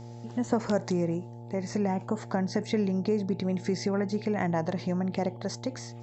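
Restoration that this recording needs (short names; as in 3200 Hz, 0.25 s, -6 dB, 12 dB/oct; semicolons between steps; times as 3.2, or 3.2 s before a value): de-hum 117.5 Hz, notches 7; notch 870 Hz, Q 30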